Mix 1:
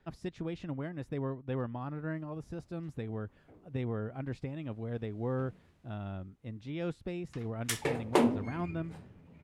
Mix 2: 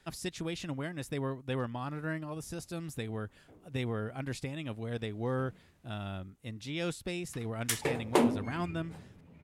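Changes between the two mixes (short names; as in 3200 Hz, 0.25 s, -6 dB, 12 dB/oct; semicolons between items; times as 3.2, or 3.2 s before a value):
speech: remove LPF 1000 Hz 6 dB/oct; master: add high shelf 8400 Hz +6 dB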